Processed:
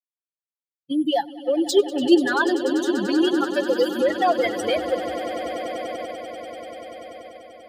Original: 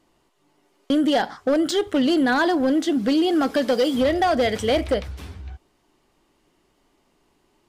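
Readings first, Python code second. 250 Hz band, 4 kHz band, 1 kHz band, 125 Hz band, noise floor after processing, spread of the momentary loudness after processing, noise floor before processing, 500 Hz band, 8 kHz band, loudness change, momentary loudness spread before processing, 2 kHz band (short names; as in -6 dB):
-1.5 dB, -1.0 dB, -0.5 dB, n/a, under -85 dBFS, 18 LU, -66 dBFS, +0.5 dB, +1.0 dB, -1.5 dB, 7 LU, +0.5 dB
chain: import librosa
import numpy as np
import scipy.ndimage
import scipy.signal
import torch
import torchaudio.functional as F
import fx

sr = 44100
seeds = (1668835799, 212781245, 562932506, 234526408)

p1 = fx.bin_expand(x, sr, power=3.0)
p2 = scipy.signal.sosfilt(scipy.signal.butter(4, 97.0, 'highpass', fs=sr, output='sos'), p1)
p3 = fx.high_shelf(p2, sr, hz=5900.0, db=3.5)
p4 = fx.spec_box(p3, sr, start_s=1.7, length_s=0.59, low_hz=320.0, high_hz=1300.0, gain_db=6)
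p5 = fx.low_shelf(p4, sr, hz=290.0, db=-4.5)
p6 = fx.echo_swell(p5, sr, ms=97, loudest=8, wet_db=-16.5)
p7 = fx.level_steps(p6, sr, step_db=9)
p8 = p6 + F.gain(torch.from_numpy(p7), -2.0).numpy()
y = p8 + 0.37 * np.pad(p8, (int(5.7 * sr / 1000.0), 0))[:len(p8)]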